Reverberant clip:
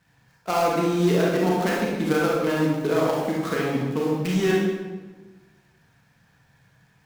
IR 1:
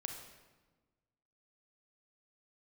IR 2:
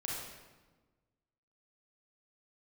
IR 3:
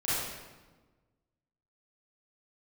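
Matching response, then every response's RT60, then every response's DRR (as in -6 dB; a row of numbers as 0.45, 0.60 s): 2; 1.3, 1.3, 1.3 s; 3.5, -4.5, -12.0 dB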